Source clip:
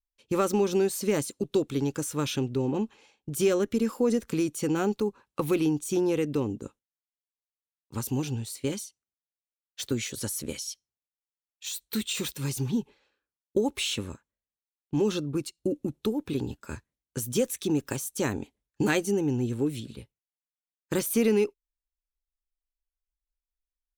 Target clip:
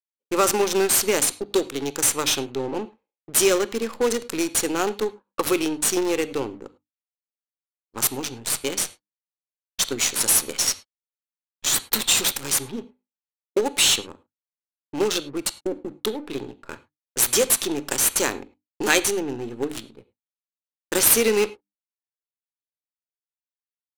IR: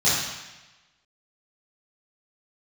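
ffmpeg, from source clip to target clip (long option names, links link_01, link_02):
-filter_complex "[0:a]aemphasis=mode=production:type=bsi,bandreject=frequency=50:width_type=h:width=6,bandreject=frequency=100:width_type=h:width=6,bandreject=frequency=150:width_type=h:width=6,bandreject=frequency=200:width_type=h:width=6,bandreject=frequency=250:width_type=h:width=6,bandreject=frequency=300:width_type=h:width=6,agate=range=-33dB:threshold=-43dB:ratio=3:detection=peak,bass=frequency=250:gain=-11,treble=frequency=4000:gain=2,asplit=2[link_01][link_02];[link_02]acrusher=bits=5:dc=4:mix=0:aa=0.000001,volume=-5dB[link_03];[link_01][link_03]amix=inputs=2:normalize=0,adynamicsmooth=sensitivity=8:basefreq=520,asplit=2[link_04][link_05];[1:a]atrim=start_sample=2205,atrim=end_sample=3087,asetrate=27342,aresample=44100[link_06];[link_05][link_06]afir=irnorm=-1:irlink=0,volume=-34dB[link_07];[link_04][link_07]amix=inputs=2:normalize=0,volume=4dB"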